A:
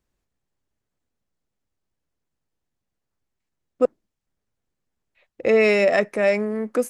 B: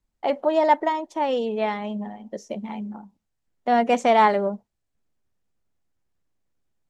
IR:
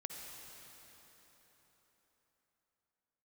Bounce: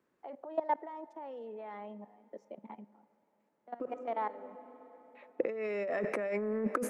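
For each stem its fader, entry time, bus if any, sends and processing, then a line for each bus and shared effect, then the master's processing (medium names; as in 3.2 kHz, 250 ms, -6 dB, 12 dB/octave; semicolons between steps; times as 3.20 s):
+0.5 dB, 0.00 s, send -14 dB, peak limiter -17 dBFS, peak gain reduction 10.5 dB; peaking EQ 740 Hz -5 dB 0.4 oct
-17.0 dB, 0.00 s, send -15 dB, expander -37 dBFS; high-pass 210 Hz 24 dB/octave; level held to a coarse grid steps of 17 dB; auto duck -12 dB, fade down 1.00 s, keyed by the first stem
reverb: on, RT60 4.3 s, pre-delay 48 ms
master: high-pass 150 Hz 12 dB/octave; three-band isolator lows -12 dB, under 190 Hz, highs -16 dB, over 2 kHz; compressor with a negative ratio -33 dBFS, ratio -1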